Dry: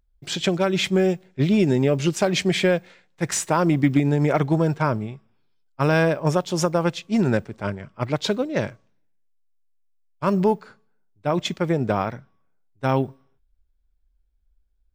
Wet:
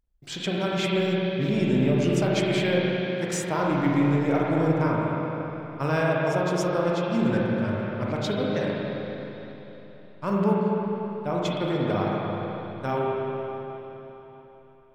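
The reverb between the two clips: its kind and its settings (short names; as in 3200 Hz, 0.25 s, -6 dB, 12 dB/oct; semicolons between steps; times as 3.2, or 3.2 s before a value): spring tank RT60 3.7 s, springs 35/39/50 ms, chirp 40 ms, DRR -4.5 dB; gain -8 dB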